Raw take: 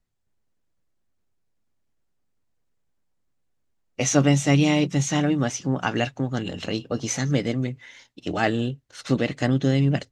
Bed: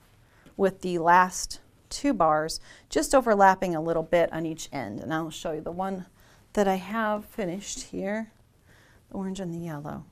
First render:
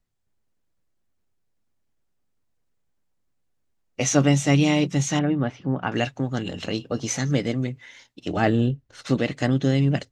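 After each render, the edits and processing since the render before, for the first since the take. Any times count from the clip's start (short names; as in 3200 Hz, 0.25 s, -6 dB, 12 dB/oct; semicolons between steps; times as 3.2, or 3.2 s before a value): 5.19–5.92 air absorption 410 m; 8.36–9.02 tilt -2 dB/oct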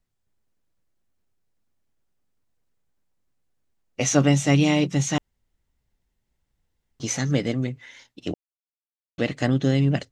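5.18–7 room tone; 8.34–9.18 mute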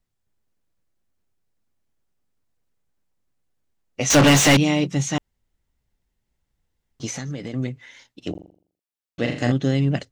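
4.1–4.57 overdrive pedal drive 36 dB, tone 4300 Hz, clips at -7 dBFS; 7.06–7.54 compressor 12:1, threshold -26 dBFS; 8.31–9.52 flutter echo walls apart 7.1 m, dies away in 0.48 s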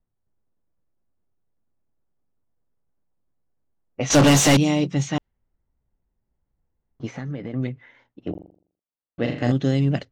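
low-pass opened by the level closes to 1100 Hz, open at -13.5 dBFS; dynamic EQ 2100 Hz, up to -5 dB, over -33 dBFS, Q 0.92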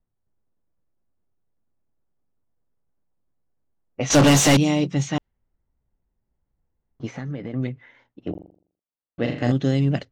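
nothing audible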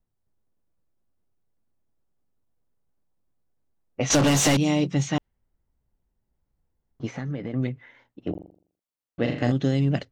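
compressor, threshold -17 dBFS, peak gain reduction 6 dB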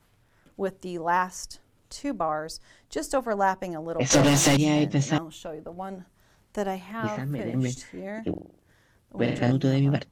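add bed -5.5 dB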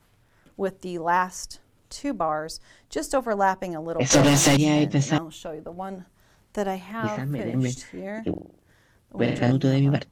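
gain +2 dB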